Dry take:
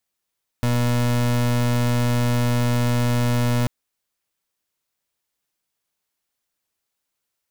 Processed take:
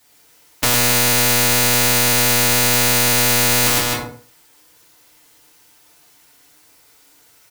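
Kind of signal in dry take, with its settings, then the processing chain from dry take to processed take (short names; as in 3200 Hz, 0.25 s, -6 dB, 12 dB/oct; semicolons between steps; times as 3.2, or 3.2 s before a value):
pulse 121 Hz, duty 31% -19.5 dBFS 3.04 s
on a send: loudspeakers at several distances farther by 37 m -2 dB, 90 m -9 dB; on the sum: FDN reverb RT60 0.43 s, low-frequency decay 0.85×, high-frequency decay 0.75×, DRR -6 dB; spectral compressor 4:1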